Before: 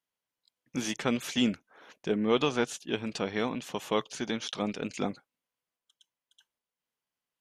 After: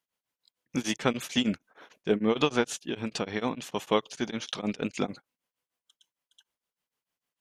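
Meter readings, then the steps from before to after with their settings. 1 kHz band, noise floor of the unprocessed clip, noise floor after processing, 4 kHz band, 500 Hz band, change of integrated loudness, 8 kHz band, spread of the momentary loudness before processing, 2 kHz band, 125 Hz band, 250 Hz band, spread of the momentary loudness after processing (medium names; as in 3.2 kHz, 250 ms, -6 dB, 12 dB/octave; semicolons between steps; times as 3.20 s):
+2.0 dB, under -85 dBFS, under -85 dBFS, +1.5 dB, +1.5 dB, +1.0 dB, +1.0 dB, 9 LU, +1.5 dB, +2.0 dB, +1.0 dB, 9 LU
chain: tremolo of two beating tones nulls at 6.6 Hz; trim +4.5 dB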